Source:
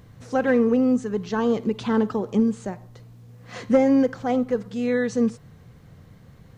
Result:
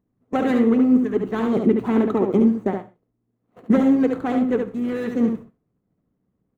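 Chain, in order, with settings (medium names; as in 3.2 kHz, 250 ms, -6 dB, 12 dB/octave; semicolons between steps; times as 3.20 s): median filter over 25 samples; gate -36 dBFS, range -27 dB; graphic EQ with 31 bands 500 Hz -8 dB, 1.25 kHz +5 dB, 2 kHz +6 dB, 5 kHz -9 dB; harmonic-percussive split harmonic -12 dB; peaking EQ 330 Hz +15 dB 2.8 oct; on a send: delay 71 ms -5 dB; on the sum: gated-style reverb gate 160 ms falling, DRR 11.5 dB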